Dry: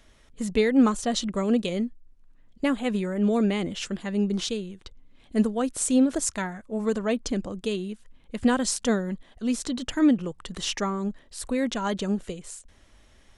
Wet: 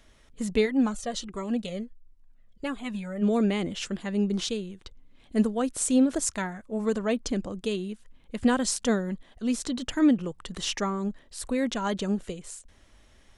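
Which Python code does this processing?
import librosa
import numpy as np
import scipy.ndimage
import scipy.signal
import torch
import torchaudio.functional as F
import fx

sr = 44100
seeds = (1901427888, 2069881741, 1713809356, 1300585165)

y = fx.comb_cascade(x, sr, direction='falling', hz=1.4, at=(0.65, 3.21), fade=0.02)
y = F.gain(torch.from_numpy(y), -1.0).numpy()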